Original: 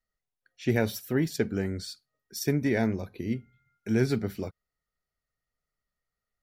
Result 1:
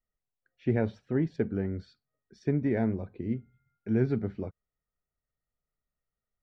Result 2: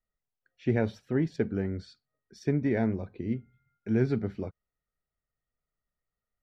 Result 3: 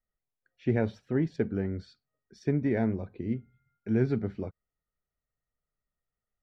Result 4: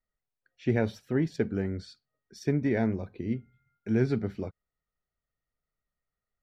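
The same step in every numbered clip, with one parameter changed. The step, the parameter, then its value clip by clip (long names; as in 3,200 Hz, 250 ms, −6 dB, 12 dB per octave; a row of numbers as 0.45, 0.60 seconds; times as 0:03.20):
head-to-tape spacing loss, at 10 kHz: 45, 29, 37, 21 decibels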